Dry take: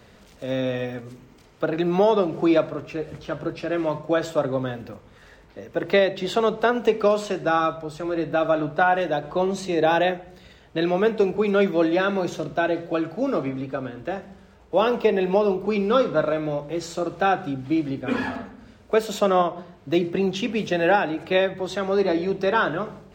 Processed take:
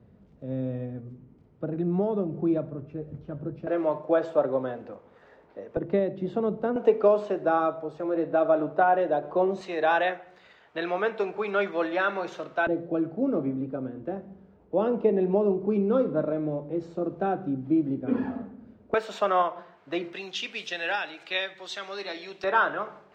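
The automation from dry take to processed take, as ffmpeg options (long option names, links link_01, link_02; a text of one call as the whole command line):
ffmpeg -i in.wav -af "asetnsamples=nb_out_samples=441:pad=0,asendcmd='3.67 bandpass f 590;5.77 bandpass f 190;6.76 bandpass f 520;9.61 bandpass f 1300;12.67 bandpass f 250;18.94 bandpass f 1300;20.13 bandpass f 3500;22.44 bandpass f 1200',bandpass=frequency=140:width_type=q:width=0.84:csg=0" out.wav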